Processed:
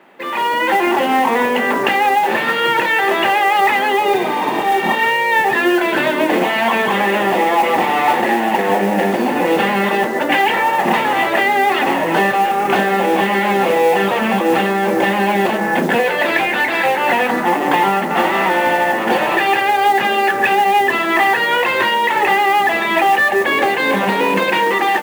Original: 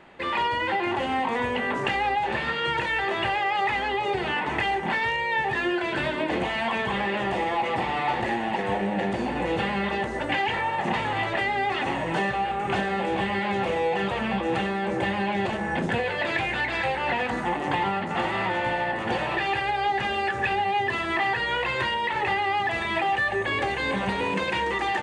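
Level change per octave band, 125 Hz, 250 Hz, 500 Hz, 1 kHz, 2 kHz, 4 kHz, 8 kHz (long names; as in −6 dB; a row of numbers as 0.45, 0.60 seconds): +4.0, +10.5, +11.5, +11.5, +10.5, +9.0, +16.0 decibels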